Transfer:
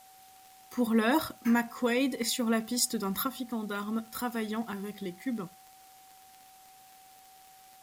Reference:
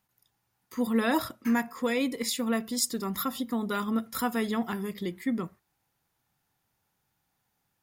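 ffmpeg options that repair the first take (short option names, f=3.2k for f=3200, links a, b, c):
-af "adeclick=t=4,bandreject=f=760:w=30,agate=range=-21dB:threshold=-48dB,asetnsamples=n=441:p=0,asendcmd='3.27 volume volume 4.5dB',volume=0dB"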